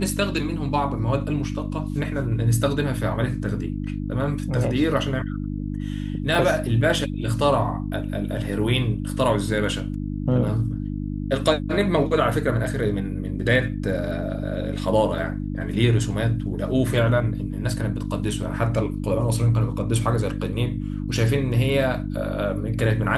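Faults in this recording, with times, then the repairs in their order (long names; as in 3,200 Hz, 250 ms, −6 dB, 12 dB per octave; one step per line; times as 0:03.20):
mains hum 50 Hz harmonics 6 −28 dBFS
0:06.35: drop-out 2.7 ms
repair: hum removal 50 Hz, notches 6
repair the gap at 0:06.35, 2.7 ms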